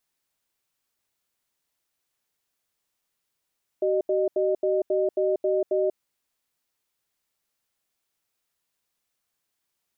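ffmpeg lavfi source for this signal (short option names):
-f lavfi -i "aevalsrc='0.0708*(sin(2*PI*380*t)+sin(2*PI*613*t))*clip(min(mod(t,0.27),0.19-mod(t,0.27))/0.005,0,1)':d=2.13:s=44100"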